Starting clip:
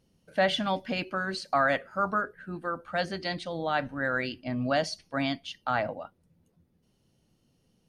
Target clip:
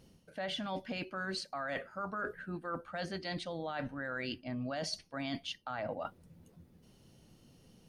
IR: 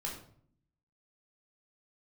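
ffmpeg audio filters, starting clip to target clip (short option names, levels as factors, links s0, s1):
-af "alimiter=limit=0.0794:level=0:latency=1:release=36,areverse,acompressor=threshold=0.00562:ratio=6,areverse,volume=2.51"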